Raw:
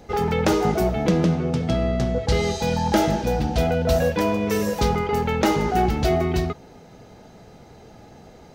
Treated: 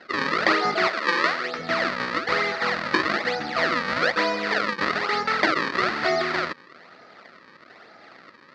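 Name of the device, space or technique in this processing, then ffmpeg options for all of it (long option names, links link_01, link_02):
circuit-bent sampling toy: -filter_complex "[0:a]acrusher=samples=36:mix=1:aa=0.000001:lfo=1:lforange=57.6:lforate=1.1,highpass=420,equalizer=frequency=440:width_type=q:width=4:gain=-6,equalizer=frequency=850:width_type=q:width=4:gain=-5,equalizer=frequency=1300:width_type=q:width=4:gain=9,equalizer=frequency=1900:width_type=q:width=4:gain=10,equalizer=frequency=3100:width_type=q:width=4:gain=-4,equalizer=frequency=4500:width_type=q:width=4:gain=8,lowpass=frequency=4600:width=0.5412,lowpass=frequency=4600:width=1.3066,asettb=1/sr,asplit=3[link_01][link_02][link_03];[link_01]atrim=end=0.874[link_04];[link_02]atrim=start=0.87:end=1.59,asetpts=PTS-STARTPTS,afade=type=in:duration=0.004:curve=qsin,afade=type=out:start_time=0.716:duration=0.004:curve=qsin,highpass=340[link_05];[link_03]atrim=start=1.586[link_06];[link_04][link_05]acrossfade=duration=0.004:curve1=hsin:curve2=qsin[link_07];[link_07][link_06]acrossfade=duration=0.004:curve1=qsin:curve2=hsin,volume=1dB"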